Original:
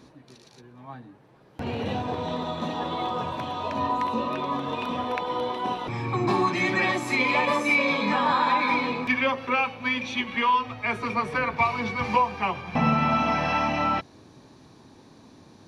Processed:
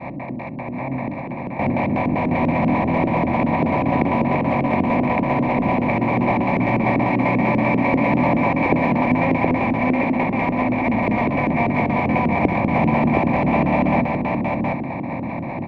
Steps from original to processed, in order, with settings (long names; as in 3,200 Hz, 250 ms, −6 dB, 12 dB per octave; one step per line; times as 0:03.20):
compressor on every frequency bin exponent 0.2
phaser with its sweep stopped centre 2,100 Hz, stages 8
downward expander −15 dBFS
in parallel at −9 dB: wrap-around overflow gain 14 dB
on the sum: auto-filter low-pass square 5.1 Hz 300–2,400 Hz
drawn EQ curve 110 Hz 0 dB, 660 Hz +5 dB, 1,200 Hz −14 dB
single-tap delay 719 ms −3 dB
on a send at −20 dB: convolution reverb, pre-delay 57 ms
on the sum: level −1 dB